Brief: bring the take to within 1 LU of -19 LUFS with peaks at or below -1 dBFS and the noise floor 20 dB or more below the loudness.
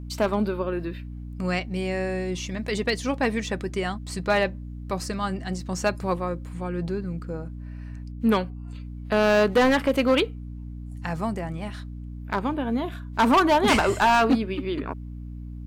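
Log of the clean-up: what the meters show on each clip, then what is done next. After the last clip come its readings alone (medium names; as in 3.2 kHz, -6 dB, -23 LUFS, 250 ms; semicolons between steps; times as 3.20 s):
clipped samples 1.2%; clipping level -14.0 dBFS; hum 60 Hz; highest harmonic 300 Hz; hum level -34 dBFS; loudness -25.0 LUFS; peak level -14.0 dBFS; loudness target -19.0 LUFS
-> clip repair -14 dBFS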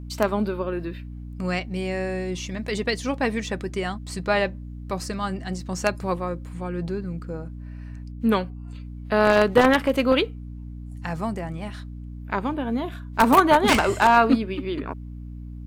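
clipped samples 0.0%; hum 60 Hz; highest harmonic 300 Hz; hum level -34 dBFS
-> de-hum 60 Hz, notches 5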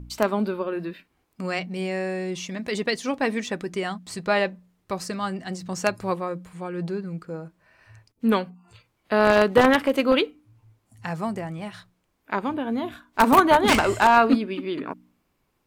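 hum not found; loudness -23.5 LUFS; peak level -4.5 dBFS; loudness target -19.0 LUFS
-> trim +4.5 dB; peak limiter -1 dBFS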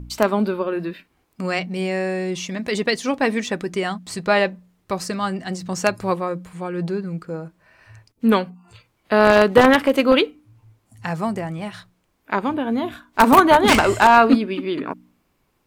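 loudness -19.5 LUFS; peak level -1.0 dBFS; noise floor -67 dBFS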